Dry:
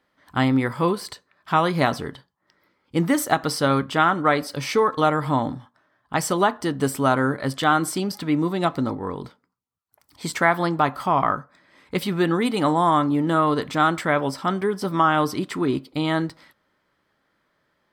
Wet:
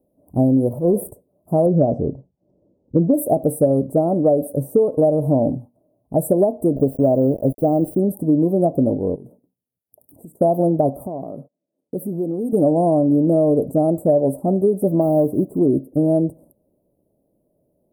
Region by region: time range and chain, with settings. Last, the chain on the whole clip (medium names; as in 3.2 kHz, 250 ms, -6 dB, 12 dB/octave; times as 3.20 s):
0.69–1.11 s: peaking EQ 5.5 kHz -8 dB 1.4 oct + transient shaper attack -12 dB, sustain +7 dB
1.66–3.14 s: steep low-pass 6.1 kHz 48 dB/octave + bass shelf 170 Hz +5.5 dB
6.76–8.00 s: small samples zeroed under -30 dBFS + peaking EQ 12 kHz -13.5 dB 2.4 oct
9.15–10.41 s: high-pass 110 Hz + compression 16:1, threshold -44 dBFS + waveshaping leveller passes 1
11.06–12.53 s: gate -51 dBFS, range -25 dB + compression 3:1, threshold -29 dBFS + high-pass 170 Hz
15.01–15.61 s: block-companded coder 5-bit + treble shelf 3.8 kHz -11 dB
whole clip: Chebyshev band-stop 640–9900 Hz, order 4; dynamic bell 590 Hz, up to +6 dB, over -36 dBFS, Q 1.6; compression, threshold -20 dBFS; trim +8 dB